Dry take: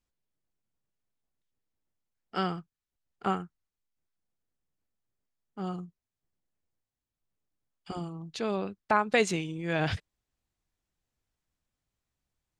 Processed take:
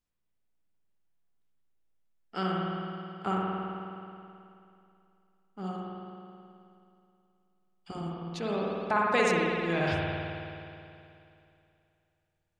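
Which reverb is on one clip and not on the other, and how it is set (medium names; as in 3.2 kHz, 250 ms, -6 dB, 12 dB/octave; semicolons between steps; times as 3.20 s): spring tank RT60 2.7 s, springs 53 ms, chirp 65 ms, DRR -3.5 dB; trim -3.5 dB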